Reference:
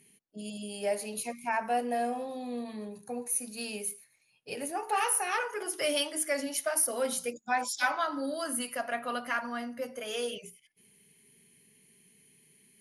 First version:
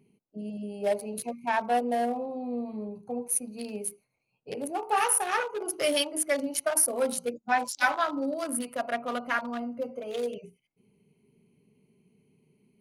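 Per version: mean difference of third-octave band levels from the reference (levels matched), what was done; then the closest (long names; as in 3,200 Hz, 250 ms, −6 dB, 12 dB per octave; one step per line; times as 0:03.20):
5.0 dB: adaptive Wiener filter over 25 samples
level +4.5 dB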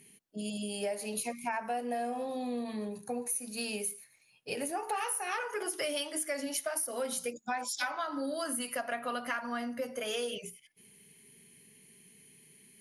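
3.0 dB: downward compressor, threshold −35 dBFS, peak gain reduction 12 dB
level +3.5 dB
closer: second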